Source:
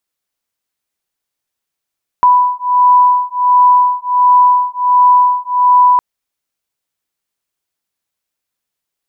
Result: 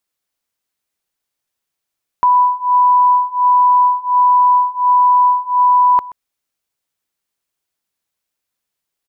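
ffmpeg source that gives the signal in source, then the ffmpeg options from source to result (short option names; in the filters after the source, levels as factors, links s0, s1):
-f lavfi -i "aevalsrc='0.316*(sin(2*PI*990*t)+sin(2*PI*991.4*t))':d=3.76:s=44100"
-af "alimiter=limit=0.422:level=0:latency=1,aecho=1:1:128:0.106"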